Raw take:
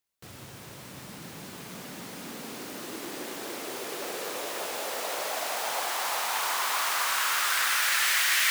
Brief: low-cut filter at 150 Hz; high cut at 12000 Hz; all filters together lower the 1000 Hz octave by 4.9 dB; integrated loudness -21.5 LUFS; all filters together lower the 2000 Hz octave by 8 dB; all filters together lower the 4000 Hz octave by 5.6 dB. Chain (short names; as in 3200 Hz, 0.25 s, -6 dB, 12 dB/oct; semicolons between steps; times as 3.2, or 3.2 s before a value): HPF 150 Hz; LPF 12000 Hz; bell 1000 Hz -3.5 dB; bell 2000 Hz -8 dB; bell 4000 Hz -4.5 dB; gain +11.5 dB